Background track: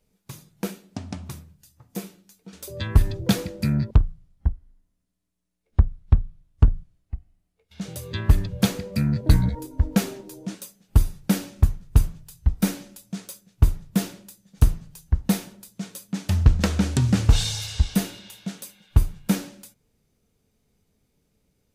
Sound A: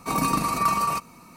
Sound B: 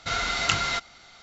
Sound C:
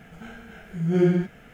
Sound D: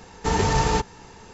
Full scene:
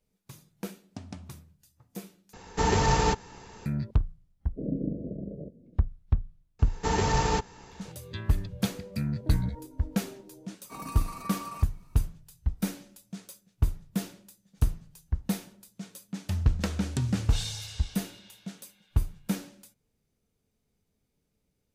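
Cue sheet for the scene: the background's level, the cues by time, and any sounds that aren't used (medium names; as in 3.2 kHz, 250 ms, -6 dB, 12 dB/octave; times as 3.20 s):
background track -8 dB
2.33 s: replace with D -2.5 dB
4.50 s: add A -3 dB, fades 0.10 s + steep low-pass 600 Hz 96 dB/octave
6.59 s: add D -4.5 dB
10.64 s: add A -16 dB
not used: B, C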